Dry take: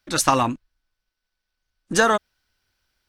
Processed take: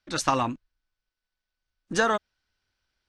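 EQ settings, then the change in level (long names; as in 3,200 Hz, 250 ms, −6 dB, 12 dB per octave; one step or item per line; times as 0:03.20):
low-pass filter 6,500 Hz 12 dB per octave
−5.5 dB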